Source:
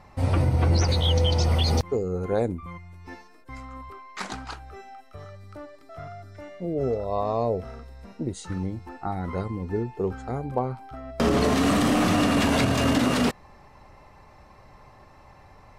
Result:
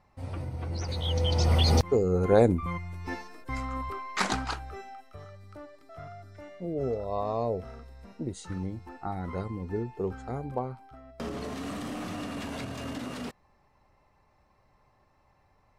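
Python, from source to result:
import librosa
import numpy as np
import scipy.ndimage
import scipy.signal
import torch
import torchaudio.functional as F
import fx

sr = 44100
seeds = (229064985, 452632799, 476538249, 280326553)

y = fx.gain(x, sr, db=fx.line((0.69, -14.0), (1.5, -1.0), (2.65, 6.0), (4.3, 6.0), (5.26, -4.5), (10.48, -4.5), (11.34, -15.0)))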